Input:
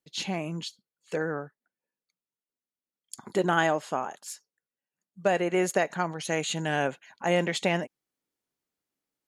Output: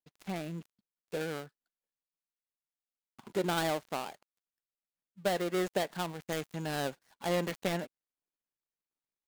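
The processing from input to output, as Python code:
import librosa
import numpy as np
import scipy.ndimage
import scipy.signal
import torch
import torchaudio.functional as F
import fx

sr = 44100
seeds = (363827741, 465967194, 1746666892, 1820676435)

y = fx.dead_time(x, sr, dead_ms=0.21)
y = y * 10.0 ** (-5.5 / 20.0)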